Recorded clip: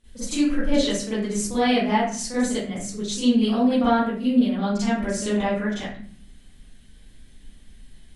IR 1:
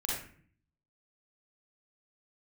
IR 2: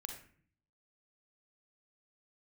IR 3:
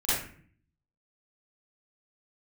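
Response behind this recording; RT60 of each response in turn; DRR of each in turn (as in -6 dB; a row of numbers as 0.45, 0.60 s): 3; 0.50, 0.50, 0.50 s; -5.0, 3.5, -14.0 dB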